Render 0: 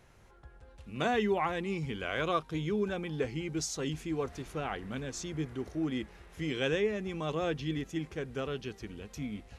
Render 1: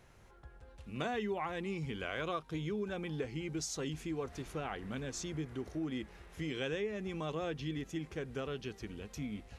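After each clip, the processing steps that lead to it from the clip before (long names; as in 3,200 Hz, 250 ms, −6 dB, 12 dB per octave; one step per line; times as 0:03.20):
downward compressor 2.5 to 1, threshold −35 dBFS, peak gain reduction 7.5 dB
level −1 dB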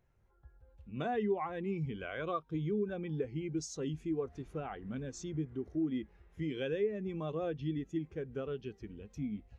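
every bin expanded away from the loudest bin 1.5 to 1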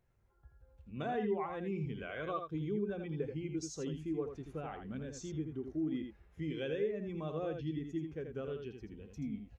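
single-tap delay 82 ms −6.5 dB
level −2.5 dB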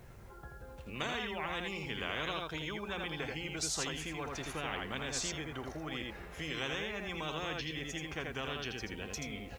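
every bin compressed towards the loudest bin 4 to 1
level +3.5 dB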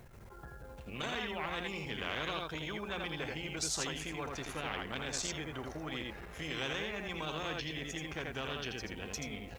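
saturating transformer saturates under 1,000 Hz
level +1.5 dB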